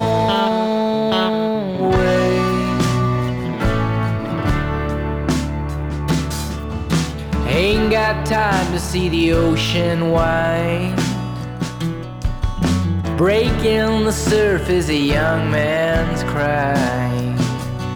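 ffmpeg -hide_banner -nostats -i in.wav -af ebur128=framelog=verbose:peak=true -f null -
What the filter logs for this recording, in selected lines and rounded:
Integrated loudness:
  I:         -18.3 LUFS
  Threshold: -28.3 LUFS
Loudness range:
  LRA:         3.9 LU
  Threshold: -38.3 LUFS
  LRA low:   -20.7 LUFS
  LRA high:  -16.7 LUFS
True peak:
  Peak:       -7.0 dBFS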